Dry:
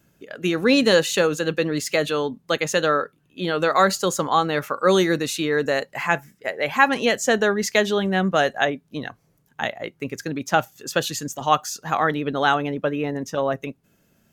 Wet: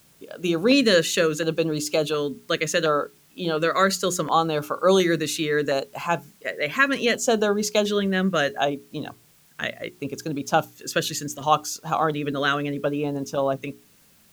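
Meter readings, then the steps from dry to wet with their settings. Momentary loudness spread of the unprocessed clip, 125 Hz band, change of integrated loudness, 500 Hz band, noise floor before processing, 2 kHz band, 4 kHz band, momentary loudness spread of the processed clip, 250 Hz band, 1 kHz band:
12 LU, −0.5 dB, −1.5 dB, −1.0 dB, −64 dBFS, −2.5 dB, −0.5 dB, 12 LU, −1.0 dB, −3.0 dB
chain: mains-hum notches 60/120/180/240/300/360/420 Hz
auto-filter notch square 0.7 Hz 830–1,900 Hz
background noise white −58 dBFS

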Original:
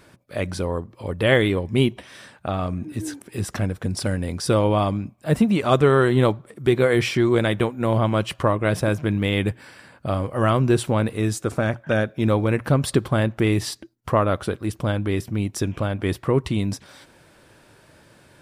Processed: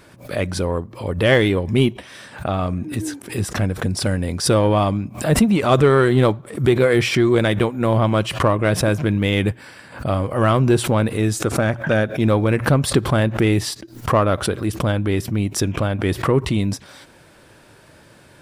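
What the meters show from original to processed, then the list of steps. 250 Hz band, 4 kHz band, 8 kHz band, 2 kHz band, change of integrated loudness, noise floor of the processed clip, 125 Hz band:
+3.0 dB, +4.0 dB, +6.5 dB, +3.5 dB, +3.0 dB, −48 dBFS, +3.5 dB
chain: in parallel at −5 dB: soft clipping −16.5 dBFS, distortion −12 dB
on the sum: background raised ahead of every attack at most 130 dB per second

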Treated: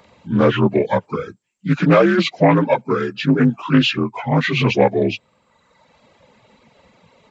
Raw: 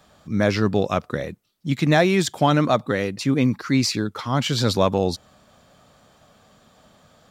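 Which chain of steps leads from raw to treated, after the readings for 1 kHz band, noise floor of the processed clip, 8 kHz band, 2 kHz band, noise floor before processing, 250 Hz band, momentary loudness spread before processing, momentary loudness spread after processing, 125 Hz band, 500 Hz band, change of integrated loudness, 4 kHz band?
+3.5 dB, −62 dBFS, below −10 dB, +4.5 dB, −57 dBFS, +4.5 dB, 11 LU, 9 LU, +3.5 dB, +5.0 dB, +4.0 dB, +2.0 dB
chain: partials spread apart or drawn together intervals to 82%
reverb reduction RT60 1.2 s
highs frequency-modulated by the lows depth 0.23 ms
level +7 dB

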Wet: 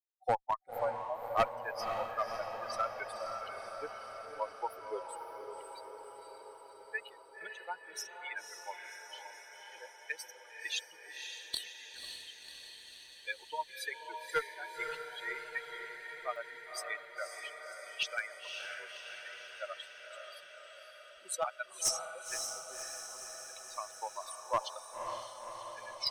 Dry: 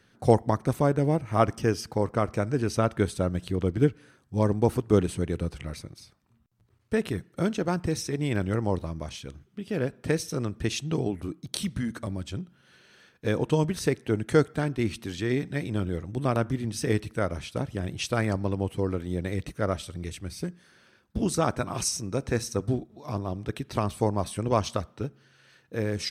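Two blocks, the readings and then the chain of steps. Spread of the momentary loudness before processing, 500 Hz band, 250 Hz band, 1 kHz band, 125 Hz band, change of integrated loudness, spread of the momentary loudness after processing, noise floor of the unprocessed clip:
12 LU, −13.5 dB, −32.0 dB, −4.5 dB, below −30 dB, −11.5 dB, 13 LU, −64 dBFS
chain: spectral dynamics exaggerated over time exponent 3
inverse Chebyshev high-pass filter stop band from 250 Hz, stop band 50 dB
high-shelf EQ 10,000 Hz −5.5 dB
in parallel at −2.5 dB: downward compressor, threshold −47 dBFS, peak gain reduction 23 dB
on the sum: asymmetric clip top −27.5 dBFS, bottom −19.5 dBFS
on a send: feedback delay with all-pass diffusion 542 ms, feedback 68%, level −5.5 dB
on the sum: level +2 dB

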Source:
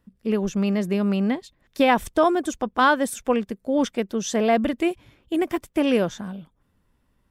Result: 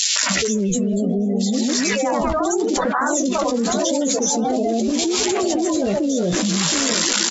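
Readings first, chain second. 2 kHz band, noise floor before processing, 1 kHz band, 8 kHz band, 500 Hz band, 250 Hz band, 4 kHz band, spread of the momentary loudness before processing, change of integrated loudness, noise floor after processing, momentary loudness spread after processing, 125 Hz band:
+2.5 dB, −68 dBFS, +0.5 dB, +18.0 dB, +2.5 dB, +4.0 dB, +13.0 dB, 9 LU, +4.0 dB, −21 dBFS, 3 LU, +4.5 dB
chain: spike at every zero crossing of −14.5 dBFS
gate on every frequency bin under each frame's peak −15 dB strong
dynamic equaliser 2,400 Hz, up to −5 dB, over −37 dBFS, Q 1
flanger 0.76 Hz, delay 9.8 ms, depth 9 ms, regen +35%
on a send: feedback echo with a low-pass in the loop 719 ms, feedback 68%, low-pass 4,500 Hz, level −23.5 dB
on the sum: delay with pitch and tempo change per echo 290 ms, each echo +2 semitones, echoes 2, each echo −6 dB
linear-phase brick-wall low-pass 7,600 Hz
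three-band delay without the direct sound highs, mids, lows 160/230 ms, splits 640/2,600 Hz
envelope flattener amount 100%

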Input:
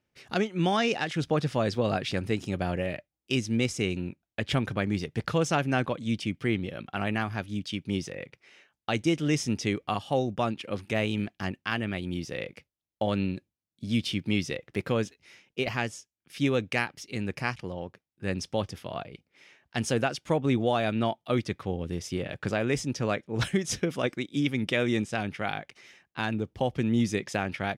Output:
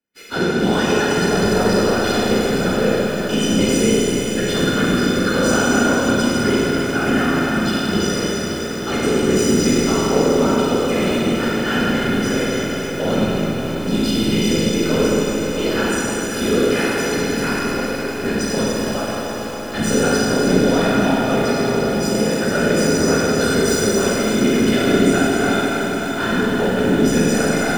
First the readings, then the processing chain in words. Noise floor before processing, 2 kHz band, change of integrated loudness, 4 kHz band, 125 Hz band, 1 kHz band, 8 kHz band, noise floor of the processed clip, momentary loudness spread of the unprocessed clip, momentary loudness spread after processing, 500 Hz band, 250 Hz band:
below −85 dBFS, +11.5 dB, +12.0 dB, +12.5 dB, +7.5 dB, +10.5 dB, +17.0 dB, −25 dBFS, 10 LU, 6 LU, +13.5 dB, +13.0 dB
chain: every partial snapped to a pitch grid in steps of 3 semitones
reverb reduction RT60 2 s
dynamic equaliser 2,300 Hz, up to −6 dB, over −44 dBFS, Q 2.6
leveller curve on the samples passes 3
in parallel at +1.5 dB: brickwall limiter −17 dBFS, peak gain reduction 7 dB
on the sum: random phases in short frames
hollow resonant body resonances 240/410/1,400 Hz, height 11 dB, ringing for 25 ms
on a send: echo machine with several playback heads 291 ms, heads second and third, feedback 70%, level −16 dB
on the sum: four-comb reverb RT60 3.5 s, combs from 33 ms, DRR −6.5 dB
feedback echo at a low word length 273 ms, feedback 80%, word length 3 bits, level −12 dB
level −16 dB

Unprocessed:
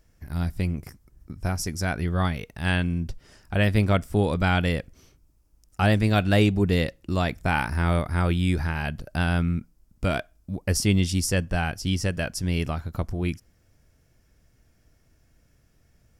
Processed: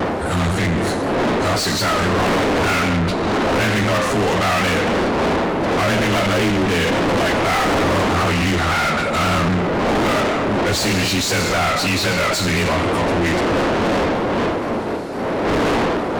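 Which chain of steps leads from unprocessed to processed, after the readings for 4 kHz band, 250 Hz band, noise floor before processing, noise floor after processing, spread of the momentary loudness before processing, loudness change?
+12.0 dB, +8.0 dB, −63 dBFS, −21 dBFS, 10 LU, +7.5 dB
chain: partials spread apart or drawn together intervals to 92%
wind on the microphone 370 Hz −29 dBFS
soft clipping −19.5 dBFS, distortion −11 dB
reverb whose tail is shaped and stops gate 340 ms falling, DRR 7.5 dB
mid-hump overdrive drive 40 dB, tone 4,400 Hz, clips at −11 dBFS
pitch modulation by a square or saw wave saw down 3.9 Hz, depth 100 cents

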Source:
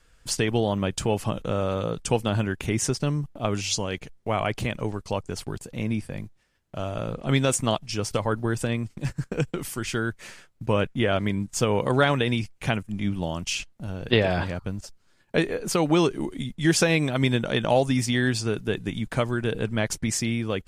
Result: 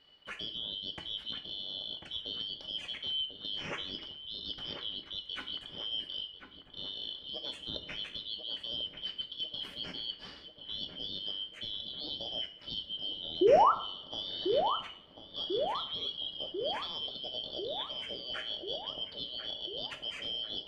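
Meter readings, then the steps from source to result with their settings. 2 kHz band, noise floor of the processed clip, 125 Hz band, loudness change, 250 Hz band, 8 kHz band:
−18.0 dB, −53 dBFS, −29.0 dB, −9.0 dB, −20.0 dB, below −30 dB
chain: band-splitting scrambler in four parts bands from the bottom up 3412
parametric band 4,700 Hz +8 dB 0.93 octaves
reversed playback
downward compressor 10 to 1, threshold −27 dBFS, peak gain reduction 18 dB
reversed playback
surface crackle 400 per second −52 dBFS
sound drawn into the spectrogram rise, 0:13.41–0:13.72, 330–1,400 Hz −21 dBFS
high-frequency loss of the air 440 metres
on a send: feedback echo with a low-pass in the loop 1,043 ms, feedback 72%, low-pass 1,300 Hz, level −6 dB
on the sum: coupled-rooms reverb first 0.43 s, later 1.9 s, from −28 dB, DRR 5.5 dB

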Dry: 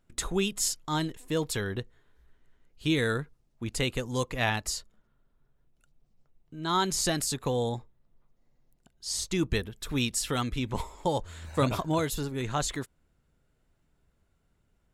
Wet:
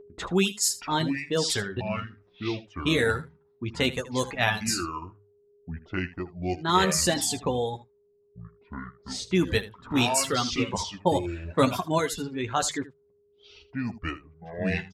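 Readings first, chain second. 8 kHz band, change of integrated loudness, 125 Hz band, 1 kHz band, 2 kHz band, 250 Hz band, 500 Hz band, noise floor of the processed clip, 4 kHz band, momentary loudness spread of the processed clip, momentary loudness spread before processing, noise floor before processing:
+3.5 dB, +3.0 dB, +1.5 dB, +5.0 dB, +5.5 dB, +4.0 dB, +4.0 dB, −65 dBFS, +4.5 dB, 16 LU, 10 LU, −72 dBFS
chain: delay with pitch and tempo change per echo 561 ms, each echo −6 semitones, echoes 2, each echo −6 dB
low-pass that shuts in the quiet parts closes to 470 Hz, open at −24.5 dBFS
high-pass filter 75 Hz
mains-hum notches 50/100/150 Hz
steady tone 410 Hz −47 dBFS
reverb reduction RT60 1.8 s
on a send: ambience of single reflections 11 ms −6.5 dB, 79 ms −16 dB
on the sum: level +4 dB

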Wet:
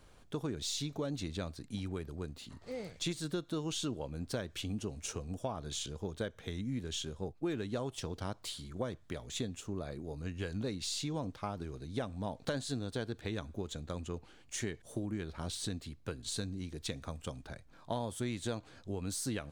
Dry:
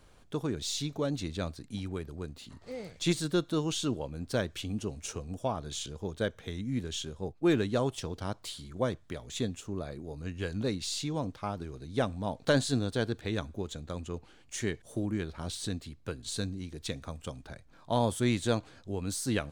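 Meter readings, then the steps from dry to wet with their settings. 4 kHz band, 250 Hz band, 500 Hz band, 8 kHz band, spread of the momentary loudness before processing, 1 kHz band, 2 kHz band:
−3.5 dB, −6.0 dB, −7.0 dB, −2.5 dB, 13 LU, −6.5 dB, −7.0 dB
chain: downward compressor 6 to 1, threshold −32 dBFS, peak gain reduction 11 dB
level −1 dB

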